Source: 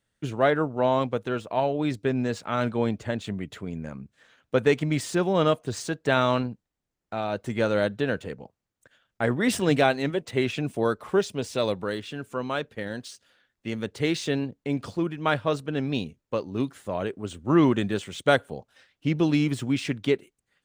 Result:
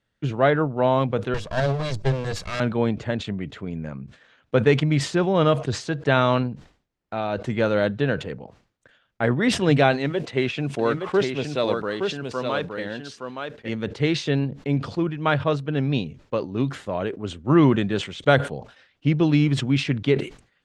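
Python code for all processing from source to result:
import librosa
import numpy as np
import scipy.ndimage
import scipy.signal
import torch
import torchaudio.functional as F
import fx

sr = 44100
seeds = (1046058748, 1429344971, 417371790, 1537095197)

y = fx.chain(x, sr, fx.lower_of_two(delay_ms=1.8),
    fx.bass_treble(bass_db=7, treble_db=12), at=(1.34, 2.6))
y = fx.chain(y, sr, fx.low_shelf(hz=140.0, db=-8.5),
    fx.mod_noise(seeds[0], snr_db=32),
    fx.echo_single(ms=868, db=-5.5), at=(9.92, 13.69))
y = scipy.signal.sosfilt(scipy.signal.butter(2, 4600.0, 'lowpass', fs=sr, output='sos'), y)
y = fx.dynamic_eq(y, sr, hz=140.0, q=5.6, threshold_db=-47.0, ratio=4.0, max_db=7)
y = fx.sustainer(y, sr, db_per_s=140.0)
y = y * 10.0 ** (2.5 / 20.0)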